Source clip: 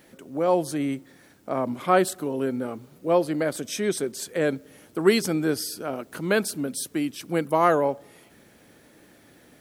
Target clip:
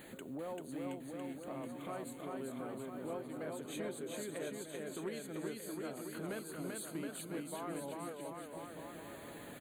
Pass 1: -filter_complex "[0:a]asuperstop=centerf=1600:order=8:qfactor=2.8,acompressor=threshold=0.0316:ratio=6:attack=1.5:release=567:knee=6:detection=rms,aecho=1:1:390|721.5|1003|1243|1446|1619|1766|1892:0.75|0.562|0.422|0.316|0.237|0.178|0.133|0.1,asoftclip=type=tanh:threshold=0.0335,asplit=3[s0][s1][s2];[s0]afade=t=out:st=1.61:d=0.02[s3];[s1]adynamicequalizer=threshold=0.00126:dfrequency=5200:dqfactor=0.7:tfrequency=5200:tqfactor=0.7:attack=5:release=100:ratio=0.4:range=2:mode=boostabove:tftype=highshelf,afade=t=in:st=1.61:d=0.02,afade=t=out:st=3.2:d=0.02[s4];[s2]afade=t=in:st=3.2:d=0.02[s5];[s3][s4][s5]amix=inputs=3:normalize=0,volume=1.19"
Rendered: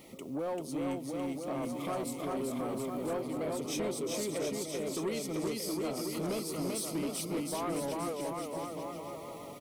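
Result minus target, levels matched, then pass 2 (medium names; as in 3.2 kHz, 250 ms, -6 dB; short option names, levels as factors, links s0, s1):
compression: peak gain reduction -10 dB; 2 kHz band -5.0 dB
-filter_complex "[0:a]asuperstop=centerf=5400:order=8:qfactor=2.8,acompressor=threshold=0.00841:ratio=6:attack=1.5:release=567:knee=6:detection=rms,aecho=1:1:390|721.5|1003|1243|1446|1619|1766|1892:0.75|0.562|0.422|0.316|0.237|0.178|0.133|0.1,asoftclip=type=tanh:threshold=0.0335,asplit=3[s0][s1][s2];[s0]afade=t=out:st=1.61:d=0.02[s3];[s1]adynamicequalizer=threshold=0.00126:dfrequency=5200:dqfactor=0.7:tfrequency=5200:tqfactor=0.7:attack=5:release=100:ratio=0.4:range=2:mode=boostabove:tftype=highshelf,afade=t=in:st=1.61:d=0.02,afade=t=out:st=3.2:d=0.02[s4];[s2]afade=t=in:st=3.2:d=0.02[s5];[s3][s4][s5]amix=inputs=3:normalize=0,volume=1.19"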